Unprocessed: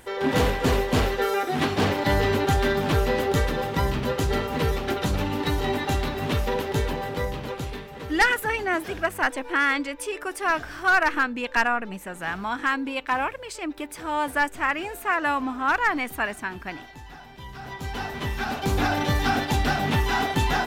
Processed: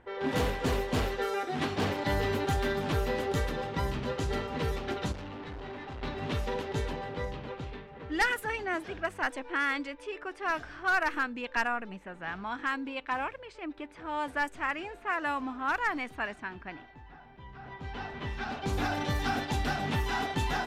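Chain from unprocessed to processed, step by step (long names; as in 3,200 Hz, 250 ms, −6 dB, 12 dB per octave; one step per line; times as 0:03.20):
0:05.12–0:06.03: tube saturation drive 31 dB, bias 0.55
low-pass that shuts in the quiet parts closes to 1,800 Hz, open at −18 dBFS
level −7.5 dB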